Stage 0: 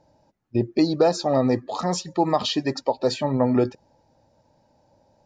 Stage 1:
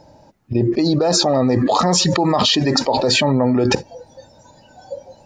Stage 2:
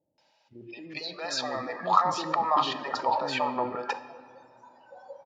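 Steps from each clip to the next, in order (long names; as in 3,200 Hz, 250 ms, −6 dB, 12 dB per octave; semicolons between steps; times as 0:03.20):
noise reduction from a noise print of the clip's start 25 dB; envelope flattener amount 100%; level −1.5 dB
band-pass filter sweep 2,900 Hz → 1,100 Hz, 0:00.66–0:01.93; multiband delay without the direct sound lows, highs 180 ms, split 460 Hz; convolution reverb RT60 2.1 s, pre-delay 6 ms, DRR 12 dB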